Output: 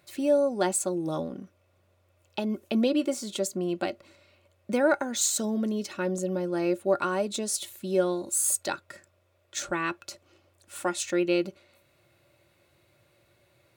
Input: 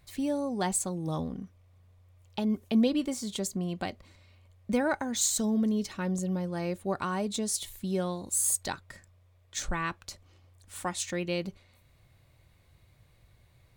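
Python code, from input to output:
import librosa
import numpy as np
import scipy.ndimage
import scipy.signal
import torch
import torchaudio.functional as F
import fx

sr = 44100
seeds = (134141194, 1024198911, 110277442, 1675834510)

y = scipy.signal.sosfilt(scipy.signal.butter(2, 110.0, 'highpass', fs=sr, output='sos'), x)
y = fx.low_shelf(y, sr, hz=250.0, db=-7.0)
y = fx.small_body(y, sr, hz=(350.0, 570.0, 1400.0, 2600.0), ring_ms=60, db=12)
y = y * librosa.db_to_amplitude(1.5)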